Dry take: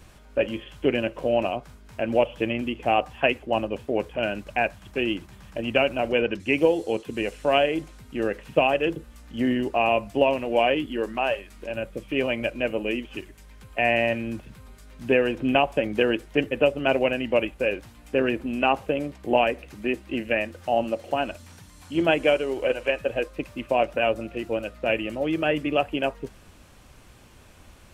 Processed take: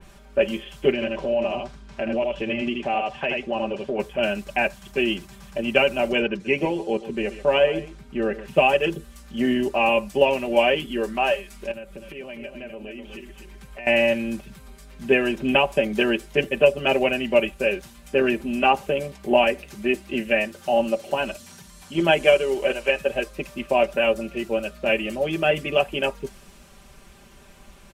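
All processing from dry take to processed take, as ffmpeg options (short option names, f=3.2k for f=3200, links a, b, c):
-filter_complex "[0:a]asettb=1/sr,asplit=3[a][b][c];[a]atrim=end=0.924[d];[b]atrim=start=0.92:end=3.99,asetpts=PTS-STARTPTS,afade=t=in:d=0.004:c=qsin,afade=t=out:st=3.066:d=0.004:c=qsin,lowpass=5.3k,aecho=1:1:78:0.531,atrim=end_sample=135387,acompressor=threshold=-24dB:ratio=3:attack=3.2:release=140:knee=1:detection=peak[e];[c]atrim=start=3.986[f];[d][e]acrossfade=d=0.004:c1=hsin:c2=qsin[g];[g][f]acrossfade=d=0.004:c1=qsin:c2=hsin,asettb=1/sr,asplit=3[h][i][j];[h]atrim=end=6.274[k];[i]atrim=start=6.27:end=8.48,asetpts=PTS-STARTPTS,afade=t=in:d=0.004:c=qsin,afade=t=out:st=2.206:d=0.004:c=qsin,lowpass=f=2.1k:p=1,aecho=1:1:133:0.188,atrim=end_sample=97461[l];[j]atrim=start=8.476[m];[k][l]acrossfade=d=0.004:c1=hsin:c2=qsin[n];[n][m]acrossfade=d=0.004:c1=qsin:c2=hsin,asettb=1/sr,asplit=3[o][p][q];[o]atrim=end=11.714[r];[p]atrim=start=11.71:end=13.87,asetpts=PTS-STARTPTS,afade=t=in:d=0.004:c=qsin,afade=t=out:st=2.156:d=0.004:c=qsin,acompressor=threshold=-38dB:ratio=4:attack=3.2:release=140:knee=1:detection=peak,aecho=1:1:251:0.422,atrim=end_sample=95256[s];[q]atrim=start=13.866[t];[r][s]acrossfade=d=0.004:c1=hsin:c2=qsin[u];[u][t]acrossfade=d=0.004:c1=qsin:c2=hsin,aecho=1:1:5.1:0.82,adynamicequalizer=threshold=0.0112:dfrequency=3500:dqfactor=0.7:tfrequency=3500:tqfactor=0.7:attack=5:release=100:ratio=0.375:range=3.5:mode=boostabove:tftype=highshelf"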